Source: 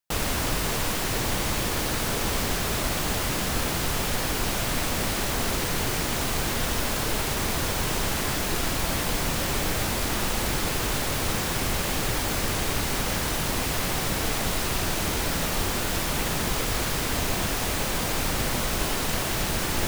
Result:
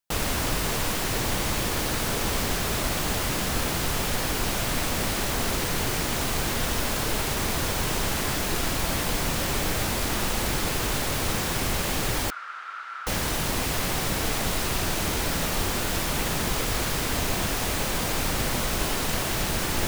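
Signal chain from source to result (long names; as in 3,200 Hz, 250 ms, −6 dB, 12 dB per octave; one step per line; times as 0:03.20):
0:12.30–0:13.07: four-pole ladder band-pass 1,400 Hz, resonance 85%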